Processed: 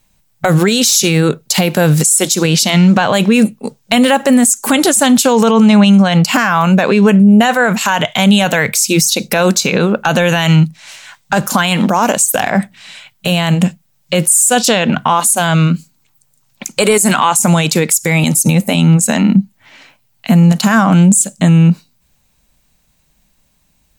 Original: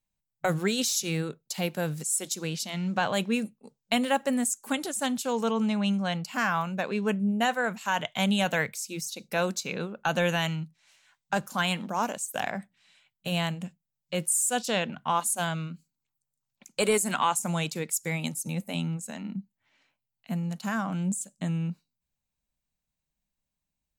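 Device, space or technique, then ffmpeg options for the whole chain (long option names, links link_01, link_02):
loud club master: -af "acompressor=threshold=-35dB:ratio=1.5,asoftclip=type=hard:threshold=-19.5dB,alimiter=level_in=28.5dB:limit=-1dB:release=50:level=0:latency=1,volume=-1dB"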